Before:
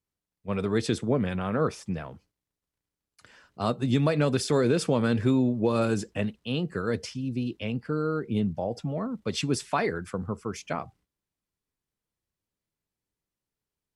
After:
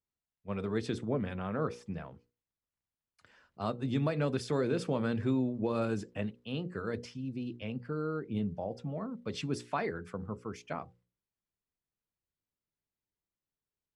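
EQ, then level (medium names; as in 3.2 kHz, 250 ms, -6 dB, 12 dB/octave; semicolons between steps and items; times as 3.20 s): low-pass 3.4 kHz 6 dB/octave; hum notches 60/120/180/240/300/360/420/480/540 Hz; -6.5 dB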